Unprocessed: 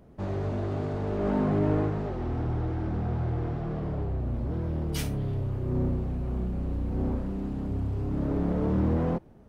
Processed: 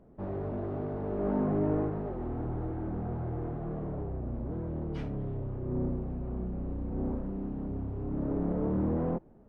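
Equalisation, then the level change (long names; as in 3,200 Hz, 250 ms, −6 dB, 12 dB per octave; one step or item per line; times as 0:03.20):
head-to-tape spacing loss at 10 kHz 32 dB
parametric band 85 Hz −8 dB 1.8 octaves
high-shelf EQ 2,400 Hz −9.5 dB
0.0 dB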